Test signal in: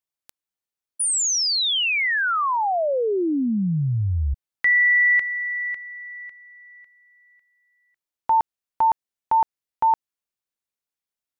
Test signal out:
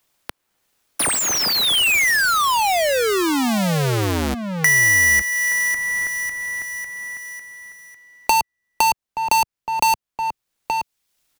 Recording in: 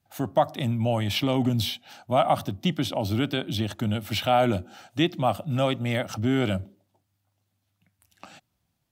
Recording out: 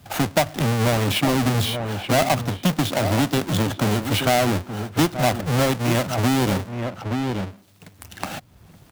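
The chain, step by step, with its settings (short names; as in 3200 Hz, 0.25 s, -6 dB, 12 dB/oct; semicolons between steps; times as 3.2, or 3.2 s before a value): half-waves squared off; outdoor echo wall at 150 m, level -11 dB; three-band squash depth 70%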